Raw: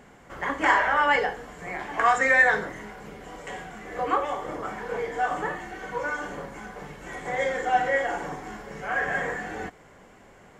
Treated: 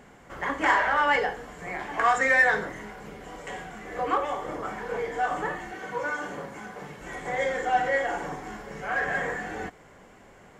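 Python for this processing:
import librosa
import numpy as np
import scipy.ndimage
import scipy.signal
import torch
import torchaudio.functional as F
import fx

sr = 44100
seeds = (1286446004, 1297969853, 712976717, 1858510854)

p1 = fx.highpass(x, sr, hz=91.0, slope=12, at=(5.71, 7.01))
p2 = 10.0 ** (-24.0 / 20.0) * np.tanh(p1 / 10.0 ** (-24.0 / 20.0))
p3 = p1 + (p2 * librosa.db_to_amplitude(-10.0))
y = p3 * librosa.db_to_amplitude(-2.5)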